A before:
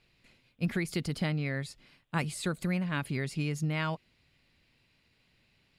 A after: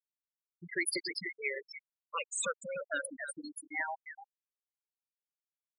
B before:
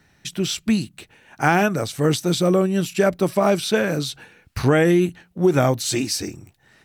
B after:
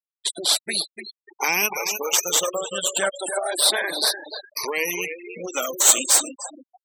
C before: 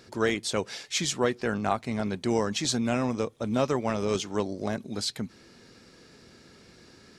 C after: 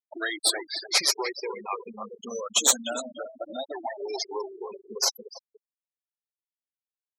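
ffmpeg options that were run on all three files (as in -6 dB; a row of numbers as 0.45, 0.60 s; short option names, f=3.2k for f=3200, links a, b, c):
-filter_complex "[0:a]afftfilt=real='re*pow(10,13/40*sin(2*PI*(0.82*log(max(b,1)*sr/1024/100)/log(2)-(0.31)*(pts-256)/sr)))':imag='im*pow(10,13/40*sin(2*PI*(0.82*log(max(b,1)*sr/1024/100)/log(2)-(0.31)*(pts-256)/sr)))':win_size=1024:overlap=0.75,acrossover=split=2000[a][b];[a]acompressor=threshold=-31dB:ratio=4[c];[b]aemphasis=mode=production:type=50kf[d];[c][d]amix=inputs=2:normalize=0,aeval=exprs='0.794*(cos(1*acos(clip(val(0)/0.794,-1,1)))-cos(1*PI/2))+0.178*(cos(2*acos(clip(val(0)/0.794,-1,1)))-cos(2*PI/2))+0.0631*(cos(3*acos(clip(val(0)/0.794,-1,1)))-cos(3*PI/2))+0.0282*(cos(6*acos(clip(val(0)/0.794,-1,1)))-cos(6*PI/2))+0.126*(cos(8*acos(clip(val(0)/0.794,-1,1)))-cos(8*PI/2))':c=same,acontrast=27,highpass=580,tiltshelf=f=970:g=4,asplit=2[e][f];[f]adelay=296,lowpass=f=2.9k:p=1,volume=-6dB,asplit=2[g][h];[h]adelay=296,lowpass=f=2.9k:p=1,volume=0.52,asplit=2[i][j];[j]adelay=296,lowpass=f=2.9k:p=1,volume=0.52,asplit=2[k][l];[l]adelay=296,lowpass=f=2.9k:p=1,volume=0.52,asplit=2[m][n];[n]adelay=296,lowpass=f=2.9k:p=1,volume=0.52,asplit=2[o][p];[p]adelay=296,lowpass=f=2.9k:p=1,volume=0.52[q];[g][i][k][m][o][q]amix=inputs=6:normalize=0[r];[e][r]amix=inputs=2:normalize=0,afftfilt=real='re*gte(hypot(re,im),0.0562)':imag='im*gte(hypot(re,im),0.0562)':win_size=1024:overlap=0.75,volume=2dB"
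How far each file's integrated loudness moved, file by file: -4.0, -0.5, +2.0 LU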